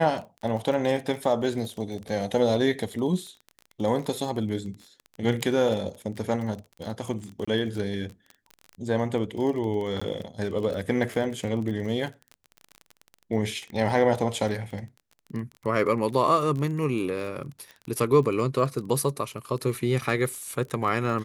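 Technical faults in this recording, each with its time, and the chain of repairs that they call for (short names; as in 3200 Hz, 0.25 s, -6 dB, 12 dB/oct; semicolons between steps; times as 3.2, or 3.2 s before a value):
crackle 24/s -32 dBFS
7.45–7.47 gap 25 ms
10–10.02 gap 15 ms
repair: de-click; interpolate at 7.45, 25 ms; interpolate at 10, 15 ms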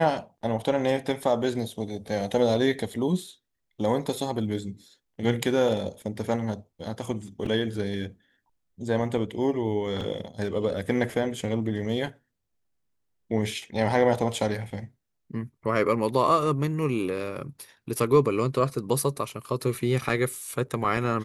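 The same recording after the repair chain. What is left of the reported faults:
none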